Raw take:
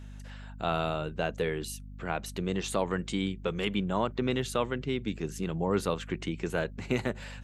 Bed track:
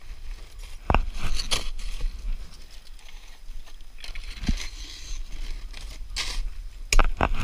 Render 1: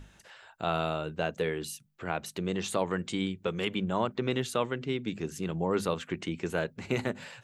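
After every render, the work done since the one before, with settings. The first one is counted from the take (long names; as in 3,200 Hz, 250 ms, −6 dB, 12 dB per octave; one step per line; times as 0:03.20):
mains-hum notches 50/100/150/200/250 Hz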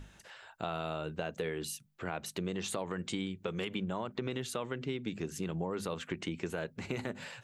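brickwall limiter −19.5 dBFS, peak gain reduction 4.5 dB
downward compressor, threshold −32 dBFS, peak gain reduction 7.5 dB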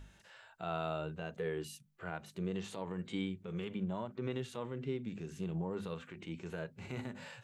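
harmonic and percussive parts rebalanced percussive −17 dB
dynamic equaliser 950 Hz, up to +3 dB, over −56 dBFS, Q 0.79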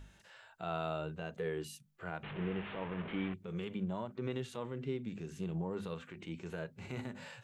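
0:02.23–0:03.34: linear delta modulator 16 kbit/s, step −37.5 dBFS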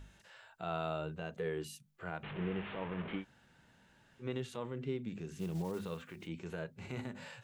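0:03.20–0:04.24: fill with room tone, crossfade 0.10 s
0:05.39–0:06.29: one scale factor per block 5 bits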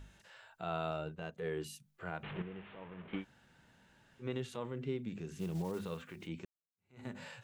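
0:00.91–0:01.51: transient designer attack −5 dB, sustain −9 dB
0:02.42–0:03.13: clip gain −9.5 dB
0:06.45–0:07.07: fade in exponential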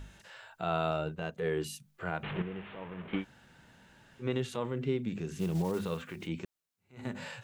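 level +6.5 dB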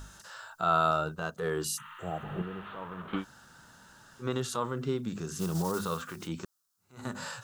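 0:01.80–0:02.54: healed spectral selection 880–5,800 Hz after
drawn EQ curve 480 Hz 0 dB, 820 Hz +3 dB, 1,300 Hz +12 dB, 2,200 Hz −6 dB, 5,200 Hz +11 dB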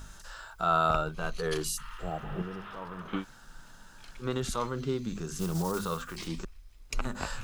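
mix in bed track −14.5 dB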